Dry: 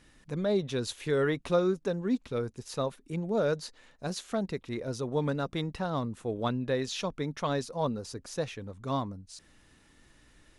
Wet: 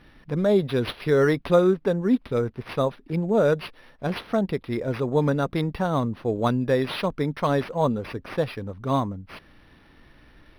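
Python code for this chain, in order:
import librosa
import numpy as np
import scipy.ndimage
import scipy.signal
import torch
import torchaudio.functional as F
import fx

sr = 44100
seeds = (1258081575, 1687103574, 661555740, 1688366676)

y = np.interp(np.arange(len(x)), np.arange(len(x))[::6], x[::6])
y = y * 10.0 ** (8.0 / 20.0)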